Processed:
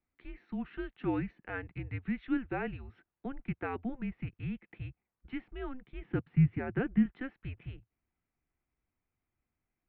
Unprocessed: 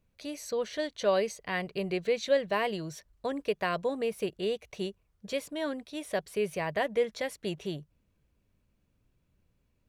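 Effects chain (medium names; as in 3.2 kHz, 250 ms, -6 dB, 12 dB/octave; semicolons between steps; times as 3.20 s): mistuned SSB -260 Hz 200–2800 Hz; 5.74–7.06 s: peaking EQ 150 Hz +12.5 dB 1.2 oct; trim -6 dB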